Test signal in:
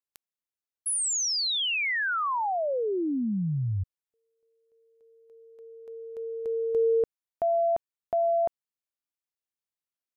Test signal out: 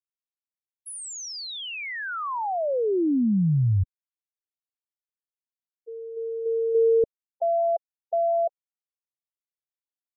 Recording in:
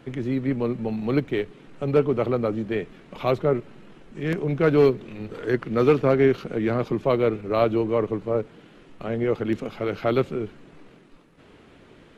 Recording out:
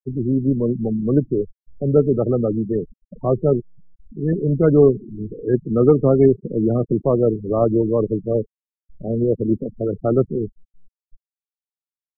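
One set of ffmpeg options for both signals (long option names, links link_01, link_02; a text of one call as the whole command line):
ffmpeg -i in.wav -af "tiltshelf=frequency=860:gain=7.5,afftfilt=real='re*gte(hypot(re,im),0.1)':imag='im*gte(hypot(re,im),0.1)':win_size=1024:overlap=0.75" out.wav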